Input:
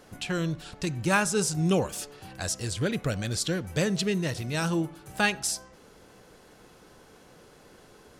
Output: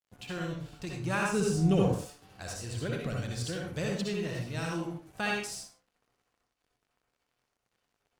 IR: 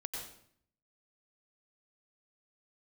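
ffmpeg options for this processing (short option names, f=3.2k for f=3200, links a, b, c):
-filter_complex "[0:a]highshelf=f=5.8k:g=-6,aeval=exprs='sgn(val(0))*max(abs(val(0))-0.00422,0)':c=same,asettb=1/sr,asplit=3[a][b][c];[a]atrim=end=1.334[d];[b]atrim=start=1.33:end=1.91,asetpts=PTS-STARTPTS,afade=t=in:d=0.004:c=qsin,afade=t=out:st=0.576:d=0.004:c=qsin,lowshelf=f=380:g=9.5[e];[c]atrim=start=1.906[f];[d][e]acrossfade=d=0.004:c1=hsin:c2=qsin[g];[g][f]acrossfade=d=0.004:c1=qsin:c2=hsin[h];[1:a]atrim=start_sample=2205,afade=t=out:st=0.43:d=0.01,atrim=end_sample=19404,asetrate=66150,aresample=44100[i];[h][i]afir=irnorm=-1:irlink=0,volume=-1dB"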